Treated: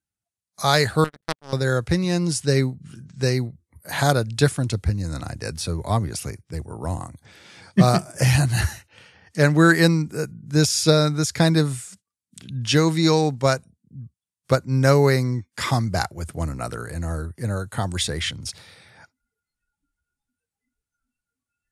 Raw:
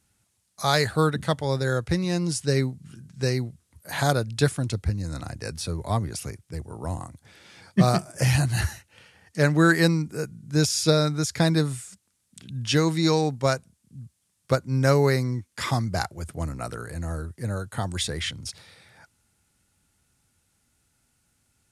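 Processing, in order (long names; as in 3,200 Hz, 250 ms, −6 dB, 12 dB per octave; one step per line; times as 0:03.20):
noise reduction from a noise print of the clip's start 25 dB
0:01.04–0:01.53: power curve on the samples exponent 3
level +3.5 dB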